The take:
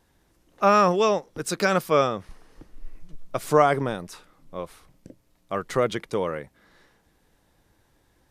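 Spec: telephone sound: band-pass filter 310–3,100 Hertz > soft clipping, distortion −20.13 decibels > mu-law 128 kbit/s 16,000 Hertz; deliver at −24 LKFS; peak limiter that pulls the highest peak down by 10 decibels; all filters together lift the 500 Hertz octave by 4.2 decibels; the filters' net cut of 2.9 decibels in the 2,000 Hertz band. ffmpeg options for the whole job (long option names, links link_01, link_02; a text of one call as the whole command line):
ffmpeg -i in.wav -af "equalizer=frequency=500:width_type=o:gain=6,equalizer=frequency=2000:width_type=o:gain=-4,alimiter=limit=-12.5dB:level=0:latency=1,highpass=310,lowpass=3100,asoftclip=threshold=-15dB,volume=3.5dB" -ar 16000 -c:a pcm_mulaw out.wav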